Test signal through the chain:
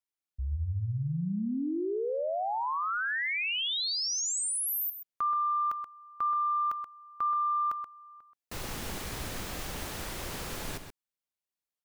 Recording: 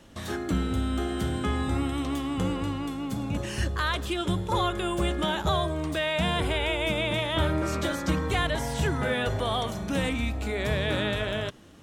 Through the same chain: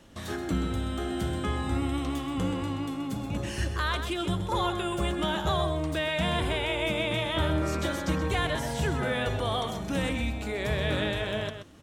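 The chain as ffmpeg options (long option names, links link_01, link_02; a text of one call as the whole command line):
ffmpeg -i in.wav -filter_complex "[0:a]acontrast=70,asplit=2[link_01][link_02];[link_02]adelay=128.3,volume=-8dB,highshelf=frequency=4000:gain=-2.89[link_03];[link_01][link_03]amix=inputs=2:normalize=0,volume=-8.5dB" out.wav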